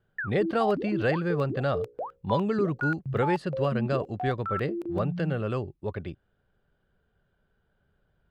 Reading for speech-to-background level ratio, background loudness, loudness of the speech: 4.5 dB, -34.0 LUFS, -29.5 LUFS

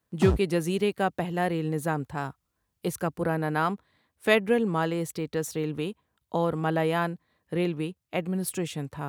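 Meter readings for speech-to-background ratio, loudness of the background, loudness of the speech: 1.5 dB, -30.0 LUFS, -28.5 LUFS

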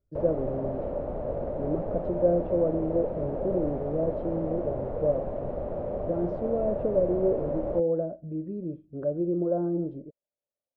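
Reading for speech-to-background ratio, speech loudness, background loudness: 4.0 dB, -29.5 LUFS, -33.5 LUFS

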